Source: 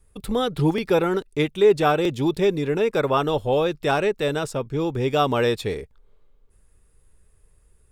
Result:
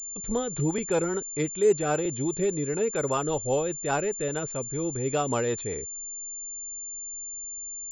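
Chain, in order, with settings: rotary speaker horn 5 Hz; pulse-width modulation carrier 7200 Hz; gain -4 dB

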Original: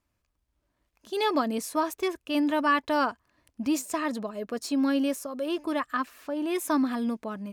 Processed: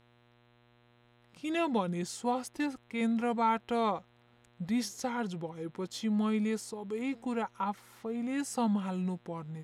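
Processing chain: wide varispeed 0.781×; buzz 120 Hz, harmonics 34, -60 dBFS -4 dB/oct; gain -5 dB

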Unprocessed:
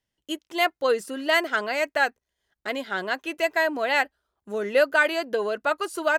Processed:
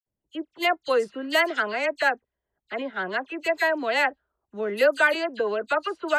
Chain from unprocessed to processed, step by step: low-pass opened by the level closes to 750 Hz, open at -17 dBFS; dispersion lows, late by 64 ms, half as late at 2700 Hz

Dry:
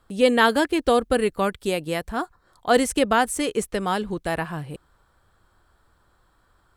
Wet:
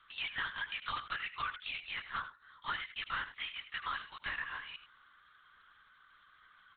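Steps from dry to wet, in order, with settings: inverse Chebyshev high-pass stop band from 480 Hz, stop band 50 dB; compressor 6:1, threshold -40 dBFS, peak gain reduction 22.5 dB; soft clip -35.5 dBFS, distortion -14 dB; on a send: echo 87 ms -12.5 dB; on the sum: LPC vocoder at 8 kHz whisper; gain +6.5 dB

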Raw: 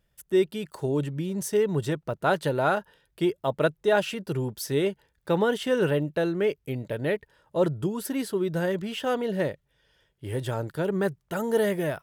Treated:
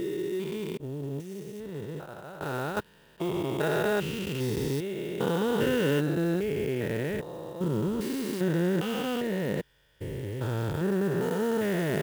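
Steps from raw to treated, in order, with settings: stepped spectrum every 0.4 s; 0.77–2.77 expander -22 dBFS; dynamic EQ 610 Hz, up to -7 dB, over -49 dBFS, Q 3.4; clock jitter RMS 0.02 ms; gain +4.5 dB

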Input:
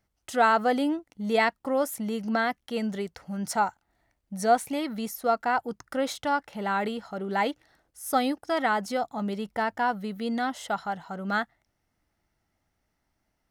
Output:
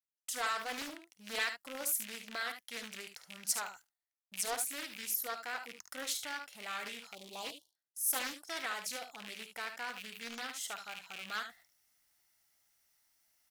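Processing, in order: rattling part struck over -42 dBFS, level -27 dBFS; gate with hold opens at -47 dBFS; pre-emphasis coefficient 0.97; early reflections 52 ms -12 dB, 73 ms -9.5 dB; dynamic EQ 900 Hz, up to -7 dB, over -59 dBFS, Q 3.1; reverse; upward compressor, threshold -53 dBFS; reverse; spectral delete 7.15–7.75, 1100–2800 Hz; Doppler distortion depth 0.48 ms; gain +3 dB

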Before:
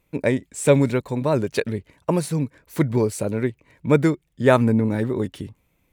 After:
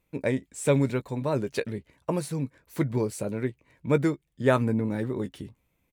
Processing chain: doubler 15 ms -12 dB; gain -6.5 dB

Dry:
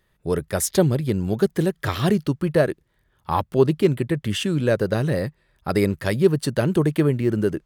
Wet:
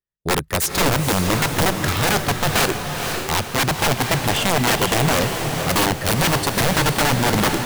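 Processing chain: expander -39 dBFS; wrapped overs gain 16.5 dB; diffused feedback echo 0.5 s, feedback 45%, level -5 dB; gain +3.5 dB

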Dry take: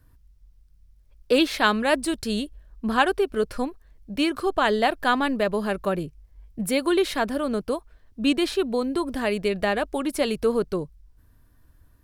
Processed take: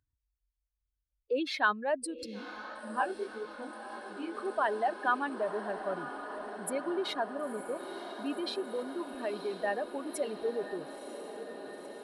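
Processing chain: spectral contrast raised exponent 2; HPF 840 Hz 6 dB/oct; diffused feedback echo 0.974 s, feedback 74%, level -10.5 dB; 2.26–4.35 chorus 1.7 Hz, delay 17 ms, depth 6.7 ms; gain -4.5 dB

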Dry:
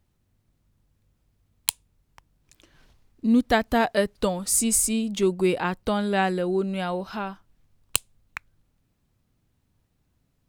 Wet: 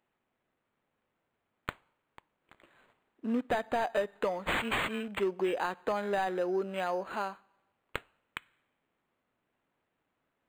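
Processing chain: HPF 430 Hz 12 dB/oct; overloaded stage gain 18.5 dB; on a send at -19 dB: reverb RT60 1.0 s, pre-delay 3 ms; on the sum: compressor, threshold -26 dBFS, peak gain reduction 6.5 dB; decimation joined by straight lines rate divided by 8×

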